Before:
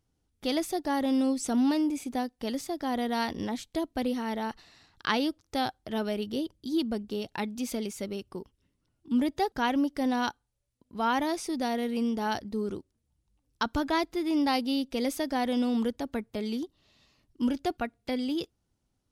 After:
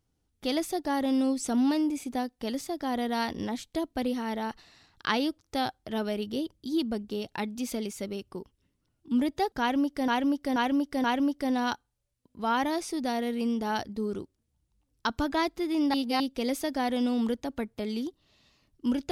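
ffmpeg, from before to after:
-filter_complex "[0:a]asplit=6[s0][s1][s2][s3][s4][s5];[s0]atrim=end=10.082[s6];[s1]atrim=start=9.598:end=10.082[s7];[s2]atrim=start=9.598:end=10.082[s8];[s3]atrim=start=9.598:end=14.502[s9];[s4]atrim=start=14.498:end=14.762,asetpts=PTS-STARTPTS,areverse[s10];[s5]atrim=start=14.758[s11];[s6][s7]acrossfade=d=0.004:c1=hsin:c2=hsin[s12];[s12][s8]acrossfade=d=0.004:c1=hsin:c2=hsin[s13];[s13][s9]acrossfade=d=0.004:c1=hsin:c2=hsin[s14];[s14][s10]acrossfade=d=0.004:c1=hsin:c2=hsin[s15];[s15][s11]acrossfade=d=0.004:c1=hsin:c2=hsin"

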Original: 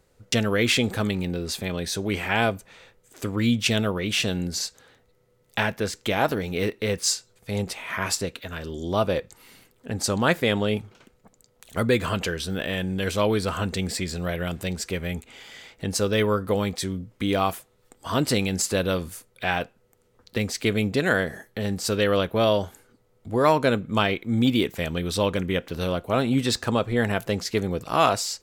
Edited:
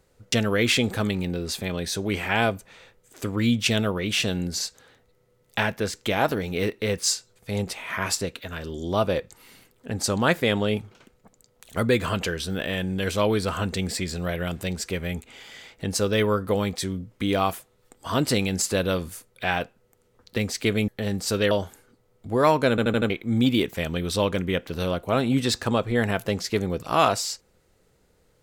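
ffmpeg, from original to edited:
-filter_complex "[0:a]asplit=8[s0][s1][s2][s3][s4][s5][s6][s7];[s0]atrim=end=20.882[s8];[s1]atrim=start=21.458:end=22.092[s9];[s2]atrim=start=22.518:end=23.792[s10];[s3]atrim=start=23.708:end=23.792[s11];[s4]atrim=start=23.708:end=23.792[s12];[s5]atrim=start=23.708:end=23.792[s13];[s6]atrim=start=23.708:end=23.792[s14];[s7]atrim=start=24.108[s15];[s8][s9]acrossfade=d=0.004:c1=hsin:c2=hsin[s16];[s16][s10]acrossfade=d=0.004:c1=hsin:c2=hsin[s17];[s17][s11]acrossfade=d=0.004:c1=hsin:c2=hsin[s18];[s18][s12]acrossfade=d=0.004:c1=hsin:c2=hsin[s19];[s19][s13]acrossfade=d=0.004:c1=hsin:c2=hsin[s20];[s20][s14]acrossfade=d=0.004:c1=hsin:c2=hsin[s21];[s21][s15]acrossfade=d=0.004:c1=hsin:c2=hsin"

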